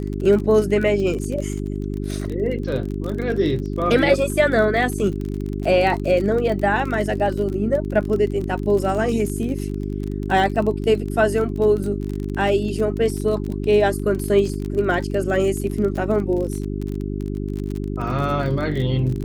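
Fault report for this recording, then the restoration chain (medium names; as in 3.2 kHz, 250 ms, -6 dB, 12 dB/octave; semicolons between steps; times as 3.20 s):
crackle 35 per s -26 dBFS
hum 50 Hz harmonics 8 -26 dBFS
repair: de-click; de-hum 50 Hz, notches 8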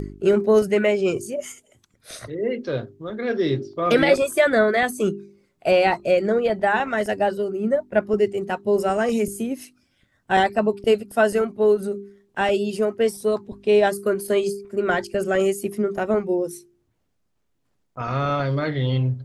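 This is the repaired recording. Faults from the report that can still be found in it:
nothing left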